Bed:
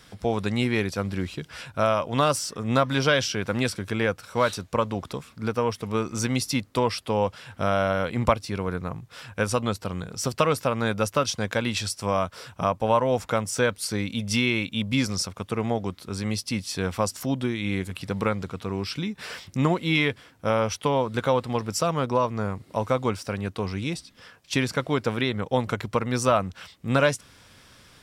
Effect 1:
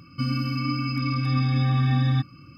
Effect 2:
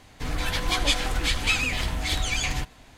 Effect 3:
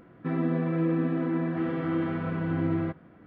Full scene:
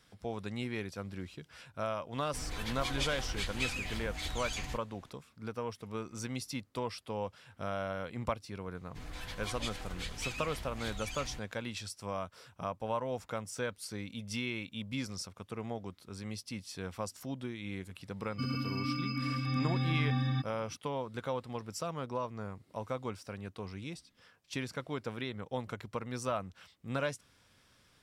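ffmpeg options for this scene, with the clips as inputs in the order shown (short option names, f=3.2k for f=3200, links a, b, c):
-filter_complex "[2:a]asplit=2[a][b];[0:a]volume=-13.5dB[c];[1:a]equalizer=f=70:w=1.5:g=-13.5[d];[a]atrim=end=2.97,asetpts=PTS-STARTPTS,volume=-12.5dB,afade=t=in:d=0.004:c=hsin,afade=t=out:st=2.966:d=0.004:c=hsin,adelay=2130[e];[b]atrim=end=2.97,asetpts=PTS-STARTPTS,volume=-16.5dB,afade=t=in:d=0.004:c=hsin,afade=t=out:st=2.966:d=0.004:c=hsin,adelay=8750[f];[d]atrim=end=2.57,asetpts=PTS-STARTPTS,volume=-7.5dB,afade=t=in:d=0.004:c=hsin,afade=t=out:st=2.566:d=0.004:c=hsin,adelay=18200[g];[c][e][f][g]amix=inputs=4:normalize=0"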